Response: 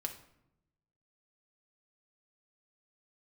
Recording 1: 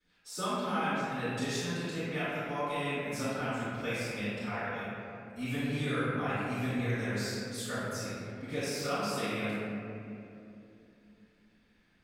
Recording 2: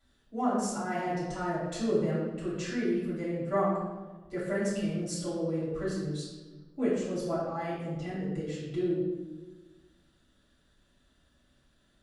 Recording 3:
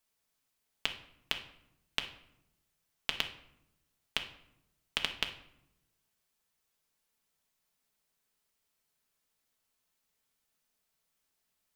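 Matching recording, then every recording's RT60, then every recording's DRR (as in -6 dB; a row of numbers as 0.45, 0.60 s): 3; 2.8, 1.3, 0.80 s; -22.0, -11.0, 3.5 dB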